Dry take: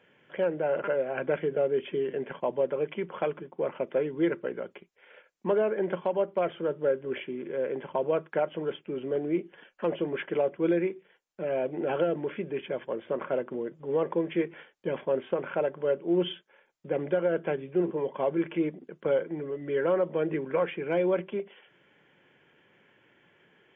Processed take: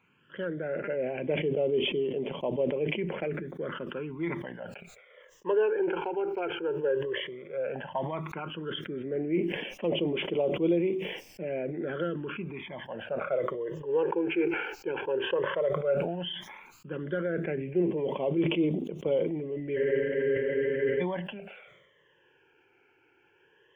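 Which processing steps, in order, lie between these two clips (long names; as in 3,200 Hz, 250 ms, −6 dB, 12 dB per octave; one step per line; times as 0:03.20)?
all-pass phaser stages 12, 0.12 Hz, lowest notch 190–1,600 Hz
frozen spectrum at 0:19.79, 1.22 s
level that may fall only so fast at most 46 dB per second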